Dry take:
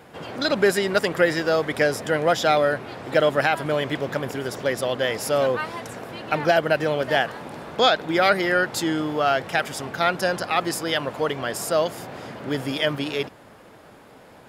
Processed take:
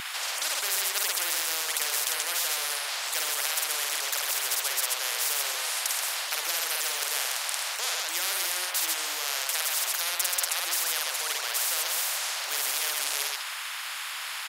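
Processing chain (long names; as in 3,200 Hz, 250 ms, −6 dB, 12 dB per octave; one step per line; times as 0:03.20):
high-pass filter 1,500 Hz 24 dB per octave
loudspeakers that aren't time-aligned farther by 17 metres −3 dB, 45 metres −9 dB
every bin compressed towards the loudest bin 10 to 1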